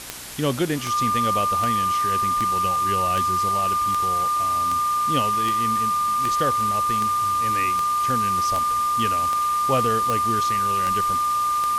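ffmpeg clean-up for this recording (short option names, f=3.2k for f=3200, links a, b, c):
-af "adeclick=t=4,bandreject=f=61.9:t=h:w=4,bandreject=f=123.8:t=h:w=4,bandreject=f=185.7:t=h:w=4,bandreject=f=247.6:t=h:w=4,bandreject=f=309.5:t=h:w=4,bandreject=f=1.2k:w=30,afwtdn=0.018"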